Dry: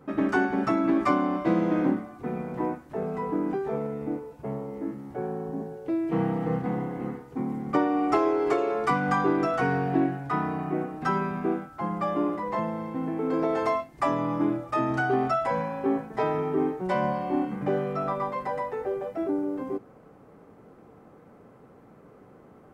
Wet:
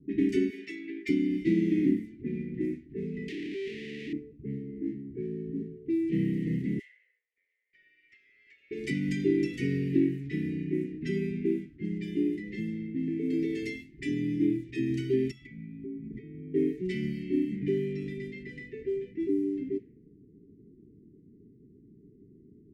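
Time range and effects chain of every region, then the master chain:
0:00.50–0:01.09: running median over 5 samples + high-pass filter 740 Hz
0:03.28–0:04.13: sign of each sample alone + high-pass filter 450 Hz 6 dB per octave + high-shelf EQ 2,900 Hz −5.5 dB
0:06.79–0:08.71: Butterworth high-pass 600 Hz 96 dB per octave + high-shelf EQ 3,400 Hz +7.5 dB + downward compressor 8 to 1, threshold −33 dBFS
0:15.31–0:16.54: downward compressor 16 to 1, threshold −35 dBFS + high-shelf EQ 5,200 Hz +7 dB + comb filter 0.9 ms, depth 91%
whole clip: low-pass that shuts in the quiet parts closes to 370 Hz, open at −23.5 dBFS; Chebyshev band-stop filter 410–1,900 Hz, order 5

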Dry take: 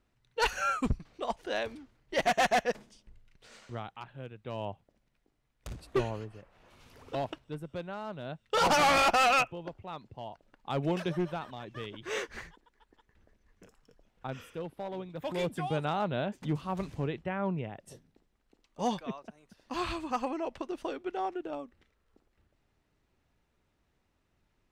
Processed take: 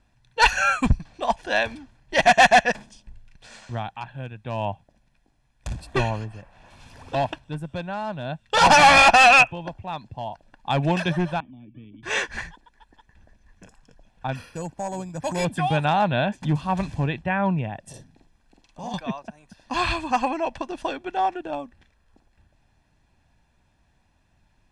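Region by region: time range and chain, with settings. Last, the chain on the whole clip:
0:11.40–0:12.03: formant resonators in series i + high-frequency loss of the air 470 metres + multiband upward and downward compressor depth 40%
0:14.35–0:15.45: high-shelf EQ 3,500 Hz −7.5 dB + bad sample-rate conversion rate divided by 6×, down filtered, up hold
0:17.89–0:18.94: downward compressor 3 to 1, threshold −46 dBFS + double-tracking delay 47 ms −2 dB
whole clip: Butterworth low-pass 11,000 Hz 36 dB per octave; comb filter 1.2 ms, depth 56%; dynamic equaliser 2,200 Hz, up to +4 dB, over −42 dBFS, Q 0.77; level +8 dB

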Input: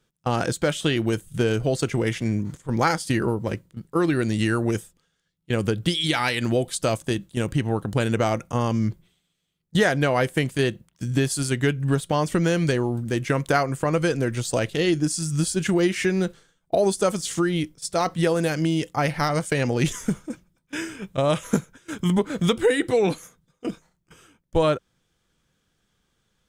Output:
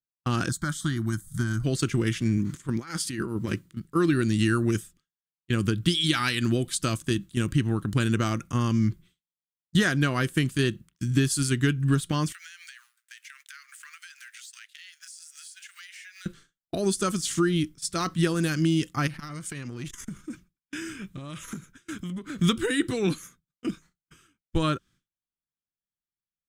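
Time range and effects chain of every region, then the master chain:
0:00.49–0:01.64: phaser with its sweep stopped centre 1,100 Hz, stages 4 + one half of a high-frequency compander encoder only
0:02.37–0:03.80: low-shelf EQ 91 Hz −10 dB + compressor whose output falls as the input rises −27 dBFS, ratio −0.5
0:12.32–0:16.26: mu-law and A-law mismatch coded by A + Butterworth high-pass 1,500 Hz + downward compressor 16 to 1, threshold −41 dBFS
0:19.07–0:22.39: downward compressor 10 to 1, threshold −29 dBFS + saturating transformer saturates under 360 Hz
whole clip: dynamic equaliser 2,100 Hz, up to −6 dB, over −44 dBFS, Q 4; downward expander −46 dBFS; flat-topped bell 640 Hz −13 dB 1.3 octaves

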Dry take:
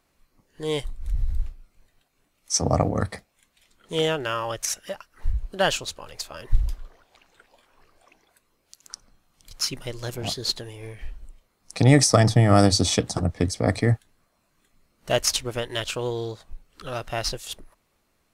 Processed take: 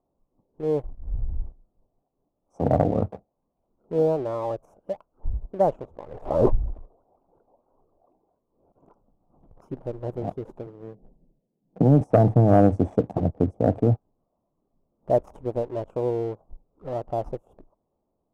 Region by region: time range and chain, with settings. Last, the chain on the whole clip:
0:05.71–0:09.62: low-pass filter 2,400 Hz 6 dB per octave + background raised ahead of every attack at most 62 dB per second
0:10.66–0:12.01: low-pass that shuts in the quiet parts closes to 390 Hz, open at −10.5 dBFS + low shelf with overshoot 110 Hz −11.5 dB, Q 3 + downward compressor 2 to 1, threshold −16 dBFS
whole clip: inverse Chebyshev low-pass filter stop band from 1,700 Hz, stop band 40 dB; low-shelf EQ 120 Hz −8 dB; leveller curve on the samples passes 1

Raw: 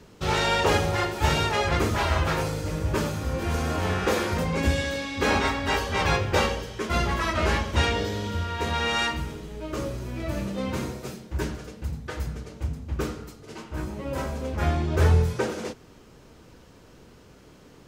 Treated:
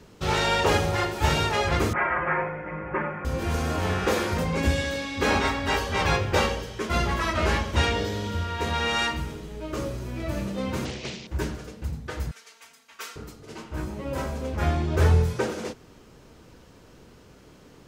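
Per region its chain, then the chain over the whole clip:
0:01.93–0:03.25: elliptic low-pass filter 2,100 Hz, stop band 50 dB + spectral tilt +3.5 dB per octave + comb filter 5.6 ms, depth 92%
0:10.85–0:11.27: linear delta modulator 32 kbit/s, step −39.5 dBFS + high shelf with overshoot 2,000 Hz +6 dB, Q 3 + highs frequency-modulated by the lows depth 0.53 ms
0:12.31–0:13.16: high-pass filter 1,500 Hz + comb filter 4.4 ms, depth 89%
whole clip: no processing

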